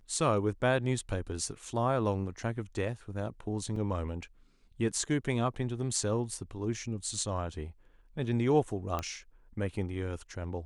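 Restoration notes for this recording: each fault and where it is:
3.76 s: dropout 2.9 ms
8.99 s: pop -19 dBFS

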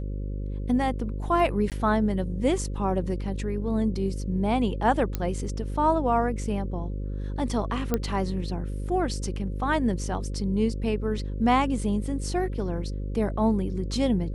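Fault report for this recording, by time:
buzz 50 Hz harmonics 11 -31 dBFS
1.70–1.72 s: dropout 18 ms
5.15 s: pop -14 dBFS
7.94 s: pop -11 dBFS

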